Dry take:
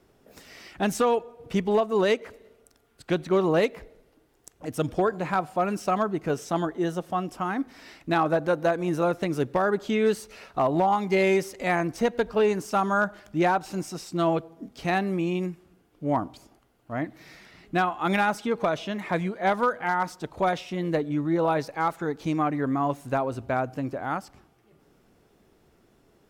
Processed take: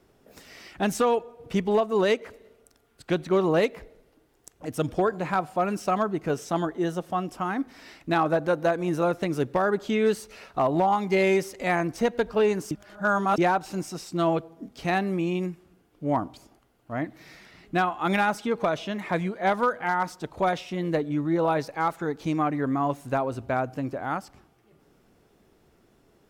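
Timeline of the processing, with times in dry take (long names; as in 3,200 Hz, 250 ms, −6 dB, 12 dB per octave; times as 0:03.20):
0:12.71–0:13.38: reverse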